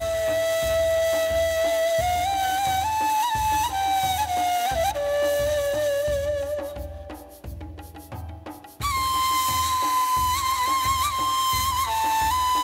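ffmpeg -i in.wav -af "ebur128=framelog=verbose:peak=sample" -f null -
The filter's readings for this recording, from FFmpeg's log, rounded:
Integrated loudness:
  I:         -23.0 LUFS
  Threshold: -33.7 LUFS
Loudness range:
  LRA:         6.4 LU
  Threshold: -44.1 LUFS
  LRA low:   -28.7 LUFS
  LRA high:  -22.3 LUFS
Sample peak:
  Peak:      -11.8 dBFS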